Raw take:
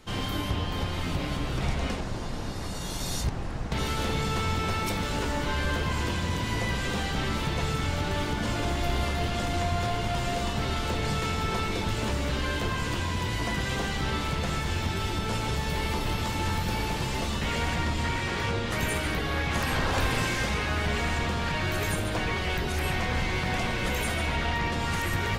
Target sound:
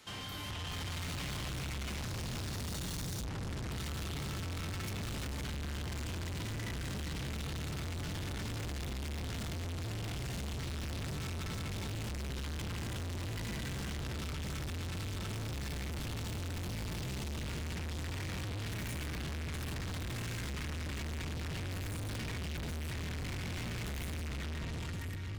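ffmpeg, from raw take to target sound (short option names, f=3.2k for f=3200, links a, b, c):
-filter_complex "[0:a]highpass=73,tiltshelf=f=970:g=-5.5,acrossover=split=390|1700[a][b][c];[a]acompressor=threshold=-39dB:ratio=4[d];[b]acompressor=threshold=-41dB:ratio=4[e];[c]acompressor=threshold=-38dB:ratio=4[f];[d][e][f]amix=inputs=3:normalize=0,asubboost=boost=11:cutoff=170,alimiter=limit=-21dB:level=0:latency=1:release=465,dynaudnorm=f=100:g=17:m=15dB,asoftclip=type=tanh:threshold=-33.5dB,volume=-4.5dB"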